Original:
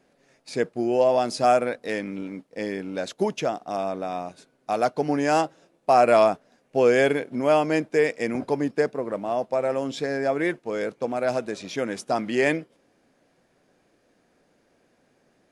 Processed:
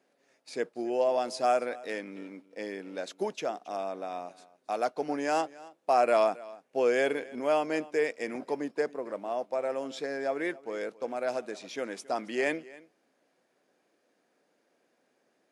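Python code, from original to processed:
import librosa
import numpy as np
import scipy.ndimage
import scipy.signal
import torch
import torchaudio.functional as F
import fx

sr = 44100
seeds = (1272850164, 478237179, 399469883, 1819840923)

y = scipy.signal.sosfilt(scipy.signal.butter(2, 280.0, 'highpass', fs=sr, output='sos'), x)
y = y + 10.0 ** (-20.5 / 20.0) * np.pad(y, (int(273 * sr / 1000.0), 0))[:len(y)]
y = y * librosa.db_to_amplitude(-6.5)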